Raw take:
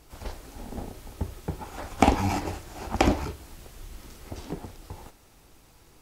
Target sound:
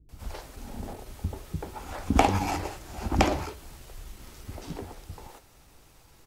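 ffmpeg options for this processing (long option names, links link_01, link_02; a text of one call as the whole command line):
ffmpeg -i in.wav -filter_complex "[0:a]atempo=0.96,acrossover=split=290[link_01][link_02];[link_02]adelay=90[link_03];[link_01][link_03]amix=inputs=2:normalize=0" out.wav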